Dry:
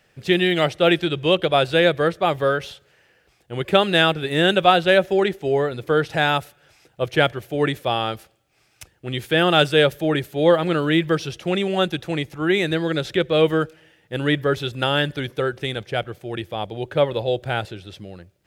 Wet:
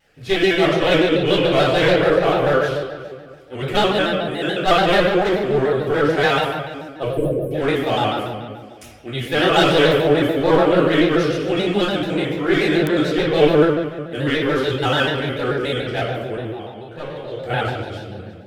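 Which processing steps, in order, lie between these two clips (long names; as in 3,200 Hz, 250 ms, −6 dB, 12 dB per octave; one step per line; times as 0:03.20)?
0:03.91–0:04.62: tuned comb filter 720 Hz, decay 0.4 s, mix 60%
delay that swaps between a low-pass and a high-pass 185 ms, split 990 Hz, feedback 55%, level −13.5 dB
asymmetric clip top −18.5 dBFS
0:07.07–0:07.51: Chebyshev band-stop filter 570–8,500 Hz, order 5
0:16.36–0:17.41: tuned comb filter 77 Hz, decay 1 s, harmonics all, mix 80%
convolution reverb RT60 1.4 s, pre-delay 3 ms, DRR −8 dB
digital clicks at 0:12.87, 0 dBFS
pitch modulation by a square or saw wave square 6.9 Hz, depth 100 cents
level −5.5 dB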